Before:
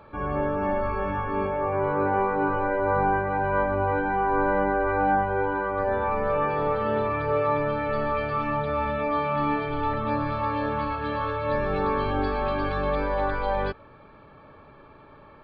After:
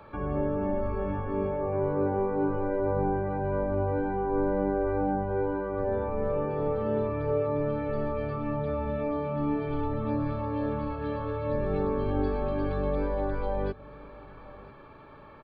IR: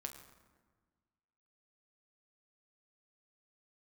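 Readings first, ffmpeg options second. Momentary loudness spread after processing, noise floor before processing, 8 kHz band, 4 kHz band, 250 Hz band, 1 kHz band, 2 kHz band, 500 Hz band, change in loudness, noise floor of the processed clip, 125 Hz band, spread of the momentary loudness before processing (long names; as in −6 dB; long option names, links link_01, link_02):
5 LU, −50 dBFS, can't be measured, below −10 dB, 0.0 dB, −9.5 dB, −13.0 dB, −2.5 dB, −4.0 dB, −49 dBFS, 0.0 dB, 4 LU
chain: -filter_complex "[0:a]acrossover=split=440|520[link_01][link_02][link_03];[link_03]acompressor=threshold=-40dB:ratio=12[link_04];[link_01][link_02][link_04]amix=inputs=3:normalize=0,aecho=1:1:993:0.0944"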